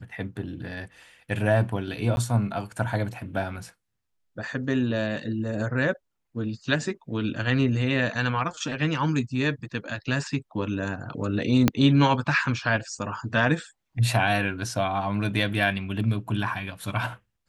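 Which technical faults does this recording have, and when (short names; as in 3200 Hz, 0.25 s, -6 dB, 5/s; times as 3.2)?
2.16–2.17 gap 11 ms
11.68 pop -5 dBFS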